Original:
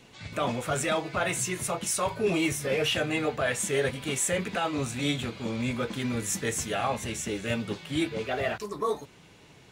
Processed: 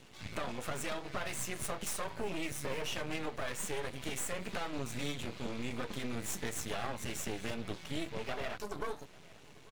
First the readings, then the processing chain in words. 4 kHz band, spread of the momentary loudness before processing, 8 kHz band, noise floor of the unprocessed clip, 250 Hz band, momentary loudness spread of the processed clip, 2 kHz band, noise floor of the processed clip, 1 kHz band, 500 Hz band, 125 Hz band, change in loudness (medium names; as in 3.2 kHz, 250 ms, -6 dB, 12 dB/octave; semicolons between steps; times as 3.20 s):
-9.5 dB, 5 LU, -10.0 dB, -54 dBFS, -10.5 dB, 4 LU, -9.5 dB, -55 dBFS, -9.5 dB, -11.5 dB, -10.0 dB, -10.0 dB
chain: compression, threshold -31 dBFS, peak gain reduction 9.5 dB; half-wave rectifier; delay 844 ms -23 dB